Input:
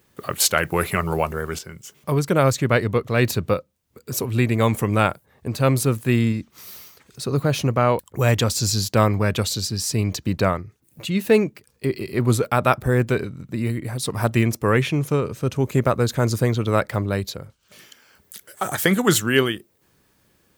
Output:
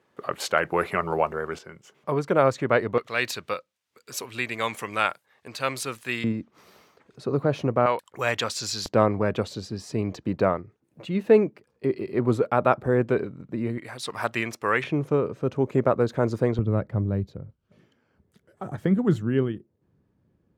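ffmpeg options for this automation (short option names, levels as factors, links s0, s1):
-af "asetnsamples=n=441:p=0,asendcmd='2.98 bandpass f 2600;6.24 bandpass f 500;7.86 bandpass f 1700;8.86 bandpass f 500;13.78 bandpass f 1700;14.84 bandpass f 490;16.59 bandpass f 130',bandpass=f=750:t=q:w=0.58:csg=0"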